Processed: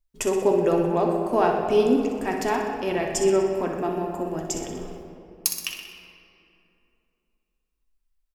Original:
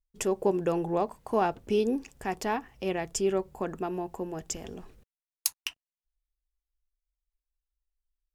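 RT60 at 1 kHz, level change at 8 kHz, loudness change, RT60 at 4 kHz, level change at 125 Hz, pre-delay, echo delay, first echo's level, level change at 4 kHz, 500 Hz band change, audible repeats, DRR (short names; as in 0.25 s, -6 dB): 2.6 s, +5.5 dB, +7.0 dB, 1.5 s, +5.5 dB, 3 ms, 62 ms, -8.5 dB, +5.5 dB, +7.5 dB, 2, 0.0 dB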